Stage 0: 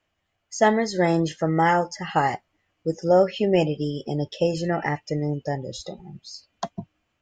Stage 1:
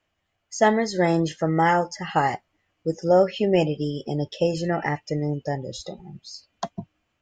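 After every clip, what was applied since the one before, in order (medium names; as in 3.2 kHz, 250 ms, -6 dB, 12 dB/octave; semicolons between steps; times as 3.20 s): no audible change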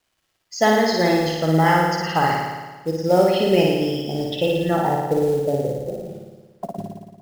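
low-pass sweep 4.6 kHz -> 500 Hz, 4.25–5.03 s; companded quantiser 6-bit; flutter echo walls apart 9.7 m, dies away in 1.3 s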